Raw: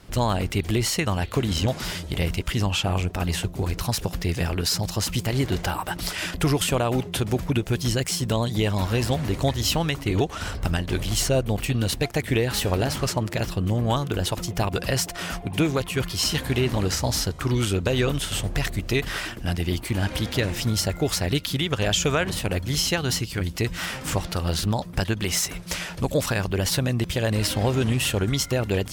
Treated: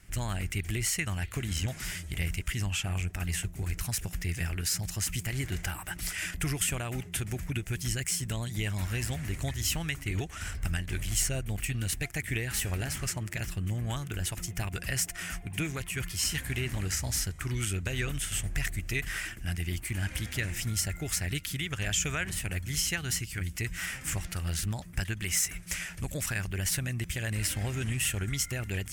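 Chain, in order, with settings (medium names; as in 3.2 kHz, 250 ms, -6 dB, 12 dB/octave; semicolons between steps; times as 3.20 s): graphic EQ 125/250/500/1000/2000/4000/8000 Hz -3/-7/-12/-11/+6/-11/+5 dB; trim -3.5 dB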